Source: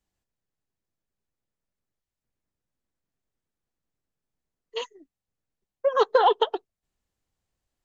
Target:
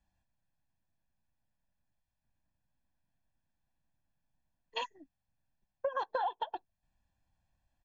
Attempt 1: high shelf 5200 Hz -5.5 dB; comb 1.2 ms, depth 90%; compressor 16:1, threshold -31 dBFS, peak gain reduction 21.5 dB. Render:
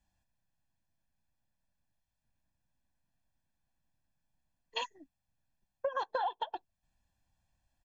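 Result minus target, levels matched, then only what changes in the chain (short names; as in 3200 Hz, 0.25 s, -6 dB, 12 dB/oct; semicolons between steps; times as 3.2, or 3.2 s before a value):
8000 Hz band +5.0 dB
change: high shelf 5200 Hz -15.5 dB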